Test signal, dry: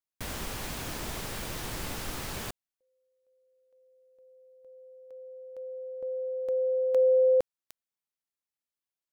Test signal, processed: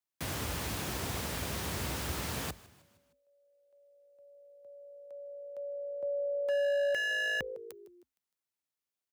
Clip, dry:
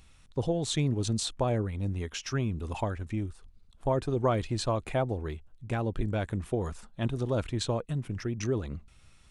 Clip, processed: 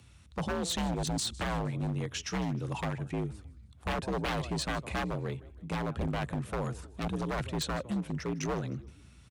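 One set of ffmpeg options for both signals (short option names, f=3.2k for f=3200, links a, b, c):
-filter_complex "[0:a]asplit=5[a][b][c][d][e];[b]adelay=155,afreqshift=-54,volume=-20.5dB[f];[c]adelay=310,afreqshift=-108,volume=-26.3dB[g];[d]adelay=465,afreqshift=-162,volume=-32.2dB[h];[e]adelay=620,afreqshift=-216,volume=-38dB[i];[a][f][g][h][i]amix=inputs=5:normalize=0,afreqshift=53,aeval=exprs='0.0501*(abs(mod(val(0)/0.0501+3,4)-2)-1)':c=same"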